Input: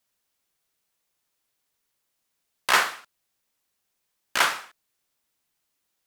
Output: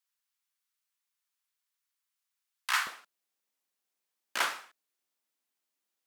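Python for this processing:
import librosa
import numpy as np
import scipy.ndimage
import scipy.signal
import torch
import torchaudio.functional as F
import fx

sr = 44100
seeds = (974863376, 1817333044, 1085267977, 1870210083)

y = fx.highpass(x, sr, hz=fx.steps((0.0, 990.0), (2.87, 200.0)), slope=24)
y = y * 10.0 ** (-8.5 / 20.0)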